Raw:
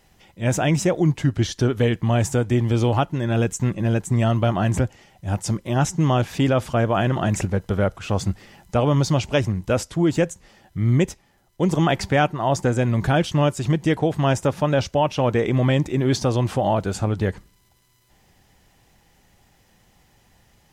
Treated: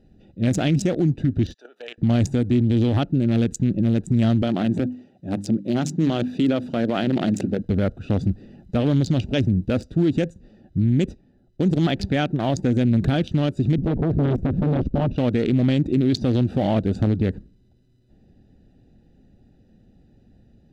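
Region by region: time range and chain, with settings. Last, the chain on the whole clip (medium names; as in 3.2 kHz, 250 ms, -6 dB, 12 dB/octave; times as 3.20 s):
1.54–1.98 s: high-pass 750 Hz 24 dB/octave + level held to a coarse grid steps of 11 dB
4.42–7.62 s: high-pass 190 Hz + hum notches 50/100/150/200/250/300 Hz
13.78–15.16 s: tilt EQ -4.5 dB/octave + transformer saturation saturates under 660 Hz
whole clip: local Wiener filter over 41 samples; fifteen-band graphic EQ 250 Hz +8 dB, 1 kHz -9 dB, 4 kHz +9 dB; peak limiter -16.5 dBFS; trim +4.5 dB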